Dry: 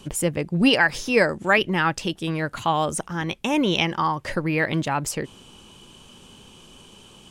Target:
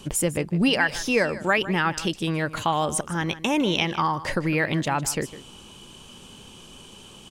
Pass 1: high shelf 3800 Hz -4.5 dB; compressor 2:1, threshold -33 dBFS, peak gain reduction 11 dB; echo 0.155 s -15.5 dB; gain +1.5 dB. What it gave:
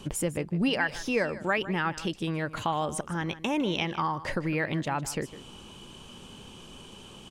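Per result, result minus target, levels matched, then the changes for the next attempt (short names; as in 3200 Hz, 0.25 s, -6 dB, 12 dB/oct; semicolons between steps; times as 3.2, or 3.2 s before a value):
compressor: peak gain reduction +5 dB; 8000 Hz band -3.0 dB
change: compressor 2:1, threshold -22.5 dBFS, peak gain reduction 6 dB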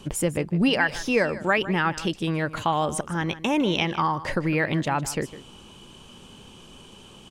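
8000 Hz band -4.0 dB
change: high shelf 3800 Hz +2 dB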